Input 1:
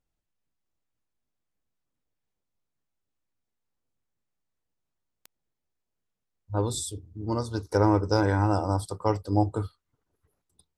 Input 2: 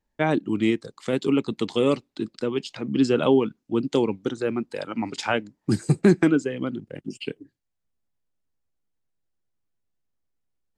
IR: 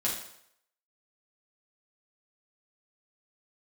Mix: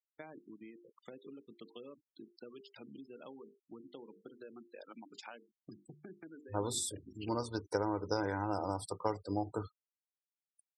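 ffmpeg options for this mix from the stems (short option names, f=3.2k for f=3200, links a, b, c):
-filter_complex "[0:a]acompressor=threshold=-23dB:ratio=16,volume=-3.5dB[a];[1:a]bandreject=f=50:t=h:w=6,bandreject=f=100:t=h:w=6,bandreject=f=150:t=h:w=6,bandreject=f=200:t=h:w=6,bandreject=f=250:t=h:w=6,bandreject=f=300:t=h:w=6,bandreject=f=350:t=h:w=6,bandreject=f=400:t=h:w=6,bandreject=f=450:t=h:w=6,bandreject=f=500:t=h:w=6,acompressor=threshold=-31dB:ratio=16,volume=-14dB[b];[a][b]amix=inputs=2:normalize=0,highpass=f=260:p=1,afftfilt=real='re*gte(hypot(re,im),0.00316)':imag='im*gte(hypot(re,im),0.00316)':win_size=1024:overlap=0.75"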